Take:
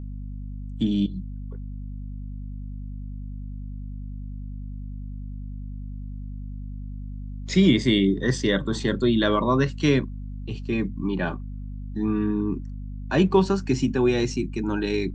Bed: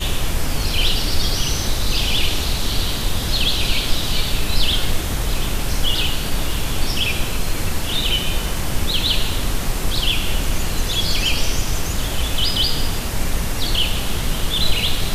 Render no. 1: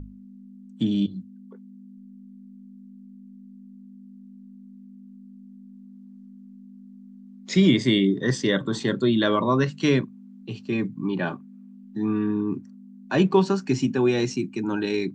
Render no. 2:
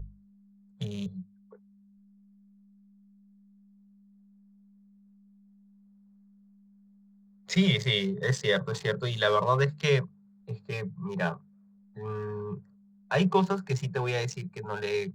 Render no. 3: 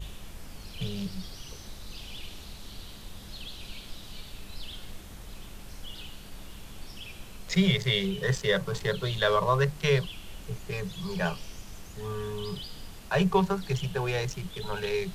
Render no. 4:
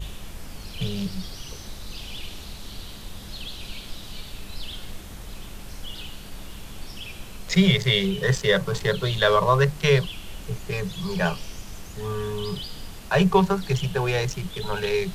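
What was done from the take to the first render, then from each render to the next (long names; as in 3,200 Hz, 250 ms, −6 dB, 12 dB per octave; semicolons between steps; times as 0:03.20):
mains-hum notches 50/100/150 Hz
adaptive Wiener filter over 15 samples; elliptic band-stop filter 180–420 Hz
mix in bed −23 dB
level +5.5 dB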